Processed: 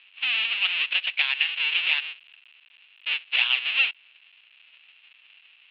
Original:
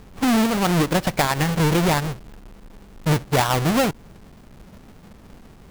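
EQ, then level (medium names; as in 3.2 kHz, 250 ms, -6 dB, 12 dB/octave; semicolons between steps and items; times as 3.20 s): resonant high-pass 2.7 kHz, resonance Q 7.4; steep low-pass 3.7 kHz 48 dB/octave; -3.0 dB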